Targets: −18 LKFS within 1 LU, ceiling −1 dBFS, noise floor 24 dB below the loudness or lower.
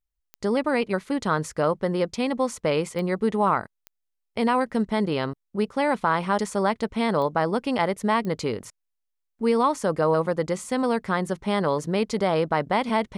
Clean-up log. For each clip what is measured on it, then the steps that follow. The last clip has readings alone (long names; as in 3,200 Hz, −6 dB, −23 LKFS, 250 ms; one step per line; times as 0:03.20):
number of clicks 5; integrated loudness −25.0 LKFS; sample peak −10.0 dBFS; target loudness −18.0 LKFS
→ click removal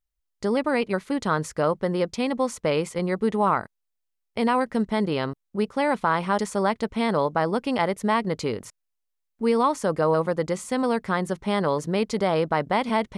number of clicks 0; integrated loudness −25.0 LKFS; sample peak −10.0 dBFS; target loudness −18.0 LKFS
→ level +7 dB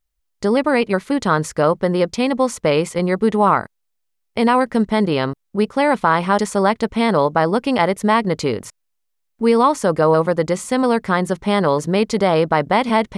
integrated loudness −18.0 LKFS; sample peak −3.0 dBFS; background noise floor −72 dBFS